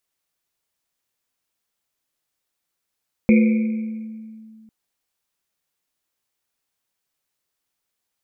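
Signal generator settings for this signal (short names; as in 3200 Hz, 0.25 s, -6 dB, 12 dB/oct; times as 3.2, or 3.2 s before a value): Risset drum length 1.40 s, pitch 220 Hz, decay 2.40 s, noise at 2300 Hz, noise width 300 Hz, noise 10%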